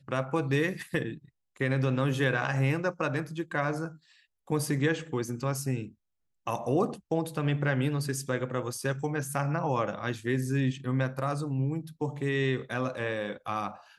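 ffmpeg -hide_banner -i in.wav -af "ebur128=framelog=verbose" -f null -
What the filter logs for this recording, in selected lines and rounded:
Integrated loudness:
  I:         -30.4 LUFS
  Threshold: -40.7 LUFS
Loudness range:
  LRA:         2.3 LU
  Threshold: -50.7 LUFS
  LRA low:   -31.9 LUFS
  LRA high:  -29.6 LUFS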